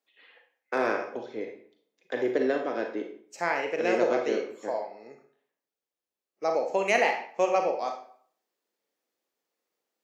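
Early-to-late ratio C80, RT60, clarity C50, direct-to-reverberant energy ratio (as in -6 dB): 10.5 dB, 0.55 s, 6.5 dB, 3.5 dB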